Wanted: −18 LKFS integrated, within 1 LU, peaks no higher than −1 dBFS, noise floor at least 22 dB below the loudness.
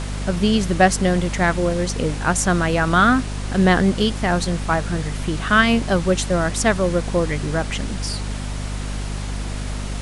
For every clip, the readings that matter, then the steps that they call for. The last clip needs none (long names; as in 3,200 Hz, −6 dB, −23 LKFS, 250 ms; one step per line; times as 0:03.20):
mains hum 50 Hz; hum harmonics up to 250 Hz; level of the hum −24 dBFS; background noise floor −27 dBFS; target noise floor −42 dBFS; integrated loudness −20.0 LKFS; sample peak −2.0 dBFS; target loudness −18.0 LKFS
→ hum removal 50 Hz, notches 5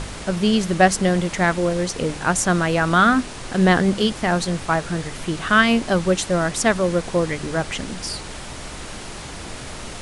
mains hum none found; background noise floor −34 dBFS; target noise floor −42 dBFS
→ noise reduction from a noise print 8 dB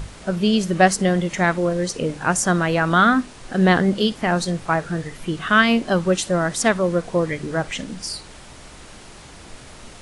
background noise floor −42 dBFS; integrated loudness −20.0 LKFS; sample peak −2.0 dBFS; target loudness −18.0 LKFS
→ level +2 dB
brickwall limiter −1 dBFS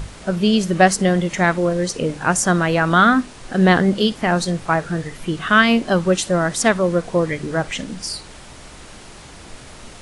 integrated loudness −18.0 LKFS; sample peak −1.0 dBFS; background noise floor −40 dBFS